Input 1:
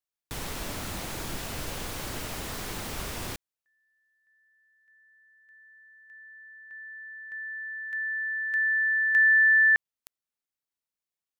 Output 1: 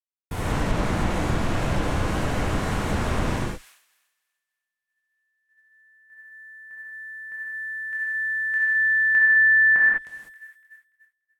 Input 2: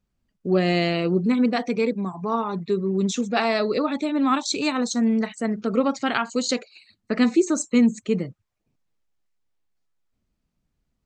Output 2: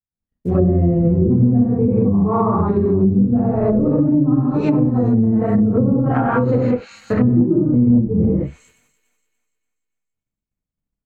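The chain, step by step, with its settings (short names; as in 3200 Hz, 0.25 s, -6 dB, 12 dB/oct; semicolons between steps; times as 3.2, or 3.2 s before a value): octaver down 1 oct, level -4 dB; high shelf 7800 Hz -8 dB; in parallel at -7 dB: hard clip -16.5 dBFS; on the sum: non-linear reverb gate 0.23 s flat, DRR -7 dB; short-mantissa float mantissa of 4-bit; bell 4500 Hz -11.5 dB 1.7 oct; on a send: thin delay 0.29 s, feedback 62%, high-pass 2500 Hz, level -15.5 dB; on the sum: expander -46 dBFS; treble ducked by the level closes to 360 Hz, closed at -8 dBFS; compressor 3:1, threshold -14 dBFS; gain +1.5 dB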